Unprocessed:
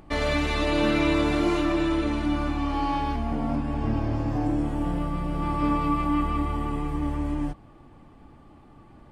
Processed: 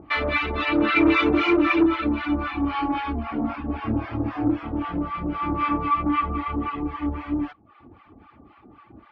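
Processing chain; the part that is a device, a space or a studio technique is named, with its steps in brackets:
reverb reduction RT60 0.59 s
0:00.96–0:01.86: graphic EQ with 15 bands 400 Hz +8 dB, 2,500 Hz +6 dB, 6,300 Hz +10 dB
guitar amplifier with harmonic tremolo (two-band tremolo in antiphase 3.8 Hz, depth 100%, crossover 810 Hz; soft clipping −21.5 dBFS, distortion −15 dB; loudspeaker in its box 78–3,700 Hz, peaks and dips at 83 Hz +3 dB, 150 Hz −10 dB, 320 Hz +4 dB, 550 Hz −4 dB, 1,300 Hz +8 dB, 2,300 Hz +6 dB)
level +7.5 dB

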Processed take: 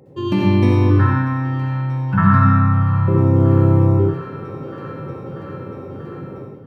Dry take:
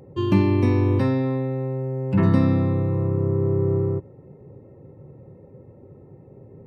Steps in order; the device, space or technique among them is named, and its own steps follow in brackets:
0:00.90–0:03.08: drawn EQ curve 160 Hz 0 dB, 390 Hz −25 dB, 1,500 Hz +15 dB, 2,100 Hz −7 dB, 4,600 Hz −14 dB
feedback echo with a high-pass in the loop 637 ms, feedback 77%, high-pass 380 Hz, level −19 dB
far laptop microphone (convolution reverb RT60 0.70 s, pre-delay 57 ms, DRR −0.5 dB; high-pass filter 110 Hz; automatic gain control gain up to 13.5 dB)
level −1 dB

